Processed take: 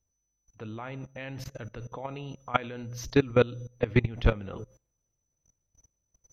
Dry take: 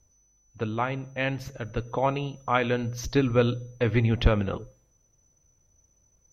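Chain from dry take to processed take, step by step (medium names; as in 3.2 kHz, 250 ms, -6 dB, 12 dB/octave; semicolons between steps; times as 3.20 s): level held to a coarse grid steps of 21 dB; trim +3.5 dB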